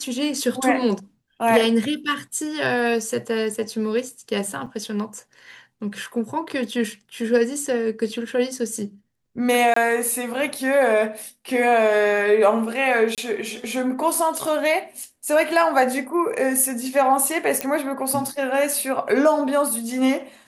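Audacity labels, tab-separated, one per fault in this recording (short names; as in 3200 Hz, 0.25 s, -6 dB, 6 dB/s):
4.660000	4.670000	gap 5.7 ms
9.740000	9.760000	gap 24 ms
13.150000	13.180000	gap 27 ms
17.610000	17.610000	pop -7 dBFS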